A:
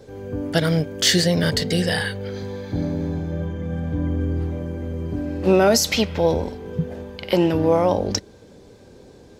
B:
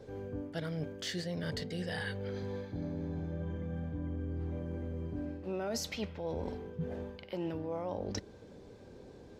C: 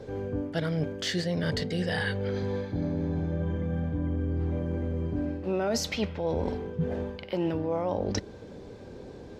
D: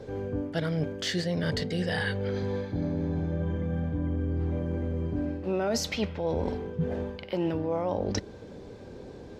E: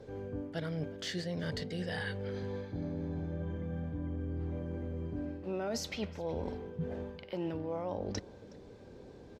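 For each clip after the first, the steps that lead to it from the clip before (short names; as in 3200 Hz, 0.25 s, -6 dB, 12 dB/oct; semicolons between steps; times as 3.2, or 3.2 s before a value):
high shelf 4800 Hz -9.5 dB; reverse; compressor 6:1, threshold -29 dBFS, peak gain reduction 16.5 dB; reverse; gain -6 dB
high shelf 9200 Hz -8 dB; gain +8.5 dB
nothing audible
echo 0.368 s -23.5 dB; gain -8 dB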